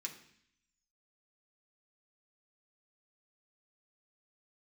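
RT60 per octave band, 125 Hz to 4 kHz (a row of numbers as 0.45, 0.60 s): 0.90, 0.85, 0.60, 0.65, 0.80, 0.85 s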